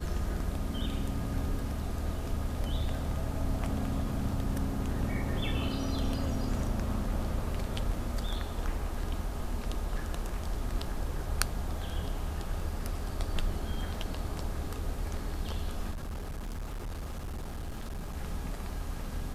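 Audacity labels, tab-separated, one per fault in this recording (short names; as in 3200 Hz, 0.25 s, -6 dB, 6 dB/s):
15.910000	18.170000	clipped -34 dBFS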